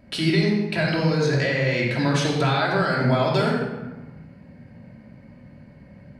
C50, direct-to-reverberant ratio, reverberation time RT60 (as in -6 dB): 1.0 dB, -4.0 dB, 1.2 s